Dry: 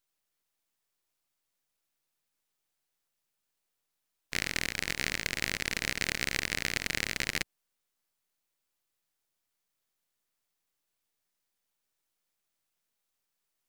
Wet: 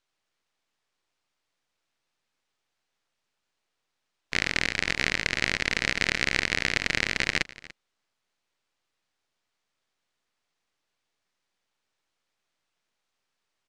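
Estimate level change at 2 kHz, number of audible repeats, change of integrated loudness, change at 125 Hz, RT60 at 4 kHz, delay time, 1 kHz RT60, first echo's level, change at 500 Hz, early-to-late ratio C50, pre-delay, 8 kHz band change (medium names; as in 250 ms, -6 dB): +7.0 dB, 1, +6.0 dB, +5.0 dB, no reverb, 290 ms, no reverb, -19.5 dB, +6.5 dB, no reverb, no reverb, 0.0 dB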